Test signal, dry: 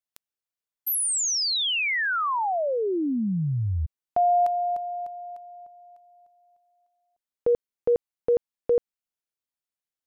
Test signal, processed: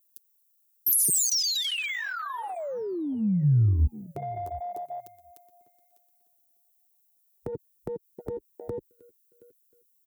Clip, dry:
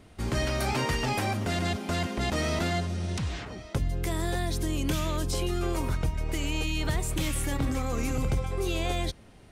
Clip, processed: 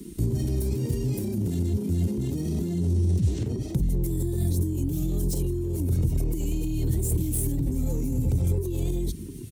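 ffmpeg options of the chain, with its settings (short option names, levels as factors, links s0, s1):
-filter_complex "[0:a]bandreject=f=4900:w=26,crystalizer=i=5:c=0,asplit=2[s0][s1];[s1]aeval=exprs='0.708*sin(PI/2*4.47*val(0)/0.708)':c=same,volume=0.251[s2];[s0][s2]amix=inputs=2:normalize=0,alimiter=limit=0.224:level=0:latency=1:release=22,lowshelf=f=500:t=q:w=3:g=10,flanger=delay=4.6:depth=6.5:regen=-16:speed=0.77:shape=triangular,acompressor=threshold=0.126:ratio=12:attack=32:release=144:knee=1:detection=rms,asplit=2[s3][s4];[s4]aecho=0:1:722|1444:0.0944|0.0245[s5];[s3][s5]amix=inputs=2:normalize=0,afwtdn=0.0631,acrossover=split=170[s6][s7];[s7]acompressor=threshold=0.0224:ratio=8:attack=2:release=64:knee=2.83:detection=peak[s8];[s6][s8]amix=inputs=2:normalize=0,highpass=46,aemphasis=mode=production:type=75kf"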